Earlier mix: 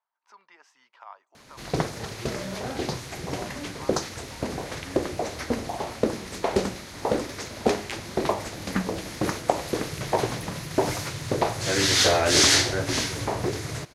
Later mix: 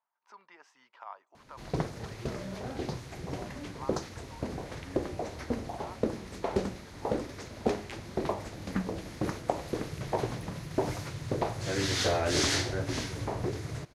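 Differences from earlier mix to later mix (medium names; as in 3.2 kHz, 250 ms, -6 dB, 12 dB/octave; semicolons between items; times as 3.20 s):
background -8.0 dB; master: add tilt EQ -1.5 dB/octave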